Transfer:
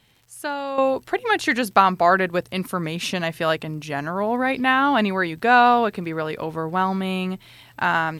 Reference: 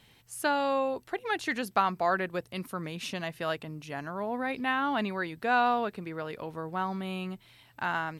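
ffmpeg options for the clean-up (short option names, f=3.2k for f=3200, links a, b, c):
-af "adeclick=t=4,asetnsamples=n=441:p=0,asendcmd='0.78 volume volume -10.5dB',volume=0dB"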